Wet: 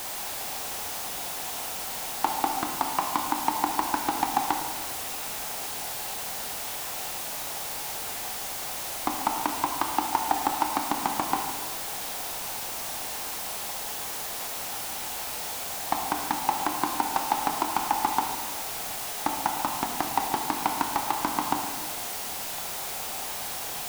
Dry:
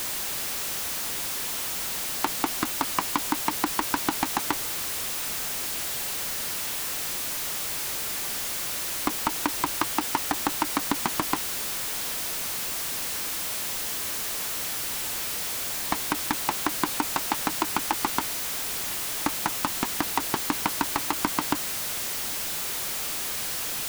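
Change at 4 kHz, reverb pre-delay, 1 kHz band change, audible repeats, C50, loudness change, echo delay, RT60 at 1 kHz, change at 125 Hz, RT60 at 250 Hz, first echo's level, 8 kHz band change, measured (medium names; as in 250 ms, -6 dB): -3.5 dB, 21 ms, +3.5 dB, no echo, 4.5 dB, -2.0 dB, no echo, 1.3 s, -3.5 dB, 1.5 s, no echo, -4.0 dB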